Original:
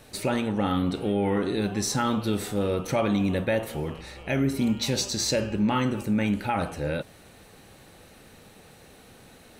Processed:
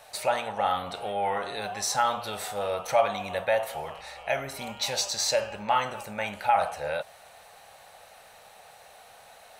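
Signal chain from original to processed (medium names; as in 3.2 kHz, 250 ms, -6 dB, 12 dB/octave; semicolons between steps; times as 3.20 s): resonant low shelf 460 Hz -14 dB, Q 3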